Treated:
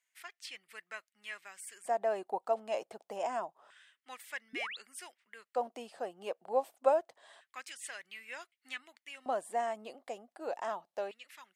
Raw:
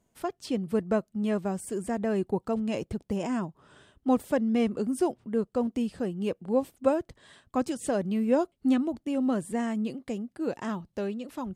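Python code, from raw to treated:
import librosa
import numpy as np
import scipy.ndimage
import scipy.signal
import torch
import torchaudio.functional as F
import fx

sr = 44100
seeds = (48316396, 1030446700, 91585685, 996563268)

y = fx.filter_lfo_highpass(x, sr, shape='square', hz=0.27, low_hz=700.0, high_hz=2000.0, q=3.3)
y = fx.spec_paint(y, sr, seeds[0], shape='rise', start_s=4.53, length_s=0.24, low_hz=220.0, high_hz=4500.0, level_db=-37.0)
y = y * librosa.db_to_amplitude(-5.5)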